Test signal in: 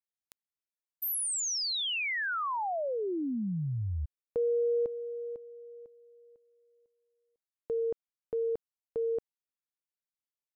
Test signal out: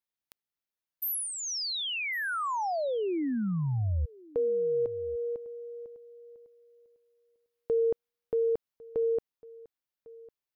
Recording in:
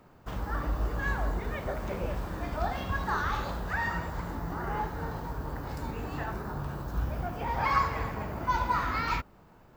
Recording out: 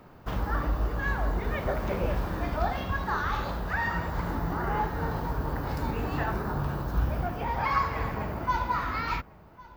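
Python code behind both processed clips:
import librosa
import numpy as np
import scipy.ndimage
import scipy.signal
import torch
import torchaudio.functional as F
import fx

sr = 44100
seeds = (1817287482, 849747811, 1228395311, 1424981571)

y = fx.peak_eq(x, sr, hz=8000.0, db=-7.5, octaves=0.65)
y = fx.rider(y, sr, range_db=3, speed_s=0.5)
y = y + 10.0 ** (-22.0 / 20.0) * np.pad(y, (int(1102 * sr / 1000.0), 0))[:len(y)]
y = F.gain(torch.from_numpy(y), 2.5).numpy()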